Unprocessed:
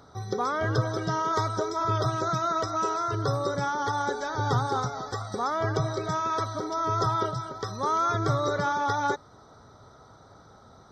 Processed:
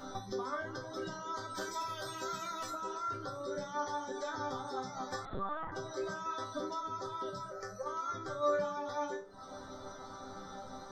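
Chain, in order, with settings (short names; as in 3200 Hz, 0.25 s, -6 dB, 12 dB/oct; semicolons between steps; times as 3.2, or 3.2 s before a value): 1.54–2.69 spectral whitening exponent 0.6; reverb removal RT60 0.56 s; notches 60/120/180/240/300/360/420/480 Hz; in parallel at 0 dB: limiter -25 dBFS, peak gain reduction 9.5 dB; on the sum: compressor 16:1, threshold -37 dBFS, peak gain reduction 19 dB; 7.42–7.86 fixed phaser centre 960 Hz, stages 6; resonator bank G3 sus4, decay 0.29 s; on a send at -9 dB: reverb RT60 0.40 s, pre-delay 3 ms; 5.25–5.72 on the sum: LPC vocoder at 8 kHz pitch kept; gain +17.5 dB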